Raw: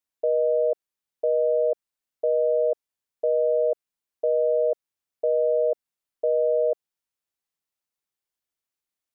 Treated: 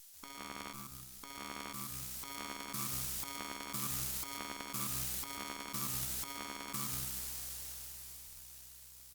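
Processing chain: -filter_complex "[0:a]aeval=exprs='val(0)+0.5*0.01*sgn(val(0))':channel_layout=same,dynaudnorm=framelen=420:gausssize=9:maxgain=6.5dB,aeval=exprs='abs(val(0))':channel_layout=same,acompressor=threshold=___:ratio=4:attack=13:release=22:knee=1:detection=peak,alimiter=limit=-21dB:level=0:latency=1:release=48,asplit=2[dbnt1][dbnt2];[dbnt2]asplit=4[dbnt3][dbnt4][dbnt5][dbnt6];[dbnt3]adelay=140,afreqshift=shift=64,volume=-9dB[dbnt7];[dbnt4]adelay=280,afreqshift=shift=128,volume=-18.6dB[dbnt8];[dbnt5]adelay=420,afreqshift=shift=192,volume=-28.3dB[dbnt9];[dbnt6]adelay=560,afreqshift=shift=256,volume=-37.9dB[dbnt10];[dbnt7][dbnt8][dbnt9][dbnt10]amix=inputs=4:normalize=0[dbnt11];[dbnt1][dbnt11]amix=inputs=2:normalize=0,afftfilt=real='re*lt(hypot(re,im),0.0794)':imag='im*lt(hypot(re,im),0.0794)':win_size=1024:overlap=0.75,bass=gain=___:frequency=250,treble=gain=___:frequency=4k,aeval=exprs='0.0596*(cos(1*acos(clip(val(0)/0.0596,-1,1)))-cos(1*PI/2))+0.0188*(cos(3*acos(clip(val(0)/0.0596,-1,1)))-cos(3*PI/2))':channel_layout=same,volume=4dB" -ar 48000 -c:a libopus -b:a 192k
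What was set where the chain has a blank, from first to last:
-32dB, 2, 12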